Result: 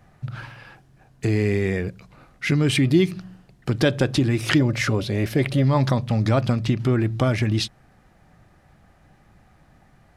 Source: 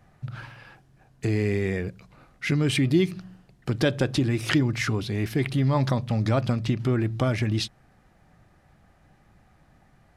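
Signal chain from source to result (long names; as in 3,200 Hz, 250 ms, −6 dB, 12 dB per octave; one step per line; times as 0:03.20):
0:04.60–0:05.65: parametric band 560 Hz +14.5 dB 0.27 octaves
level +3.5 dB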